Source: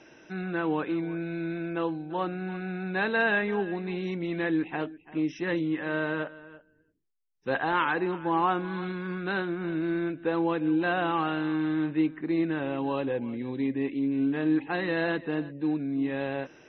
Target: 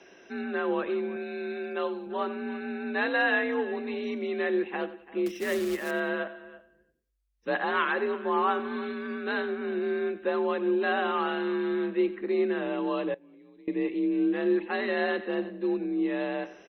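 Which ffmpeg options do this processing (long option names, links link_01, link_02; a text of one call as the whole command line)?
ffmpeg -i in.wav -filter_complex "[0:a]equalizer=frequency=63:width_type=o:width=0.82:gain=-13.5,asettb=1/sr,asplit=3[link_01][link_02][link_03];[link_01]atrim=end=5.264[link_04];[link_02]atrim=start=5.26:end=5.91,asetpts=PTS-STARTPTS,afade=type=in:duration=0.004:curve=qsin,afade=type=out:start_time=0.646:duration=0.004:curve=qsin,acrusher=bits=3:mode=log:mix=0:aa=0.000001[link_05];[link_03]atrim=start=5.906[link_06];[link_04][link_05]acrossfade=duration=0.004:curve1=hsin:curve2=qsin[link_07];[link_07][link_06]acrossfade=duration=0.004:curve1=qsin:curve2=hsin,bandreject=frequency=870:width=12,aecho=1:1:91|182|273:0.178|0.0658|0.0243,afreqshift=49,asettb=1/sr,asplit=3[link_08][link_09][link_10];[link_08]atrim=end=1.164[link_11];[link_09]atrim=start=1.16:end=2.07,asetpts=PTS-STARTPTS,afade=type=in:duration=0.004:curve=qsin,afade=type=out:start_time=0.906:duration=0.004:curve=qsin,bass=frequency=250:gain=-6,treble=frequency=4000:gain=8[link_12];[link_10]atrim=start=2.066[link_13];[link_11][link_12]acrossfade=duration=0.004:curve1=hsin:curve2=qsin[link_14];[link_14][link_13]acrossfade=duration=0.004:curve1=qsin:curve2=hsin,asettb=1/sr,asplit=3[link_15][link_16][link_17];[link_15]atrim=end=13.144[link_18];[link_16]atrim=start=13.14:end=13.68,asetpts=PTS-STARTPTS,afade=type=in:duration=0.004:curve=qsin,afade=type=out:start_time=0.536:duration=0.004:curve=qsin,acompressor=threshold=-51dB:ratio=16[link_19];[link_17]atrim=start=13.676[link_20];[link_18][link_19]acrossfade=duration=0.004:curve1=hsin:curve2=qsin[link_21];[link_21][link_20]acrossfade=duration=0.004:curve1=qsin:curve2=hsin" -ar 48000 -c:a libopus -b:a 96k out.opus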